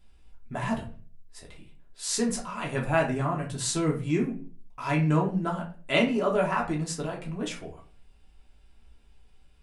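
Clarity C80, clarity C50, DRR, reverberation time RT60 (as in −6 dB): 15.0 dB, 10.0 dB, −1.5 dB, 0.40 s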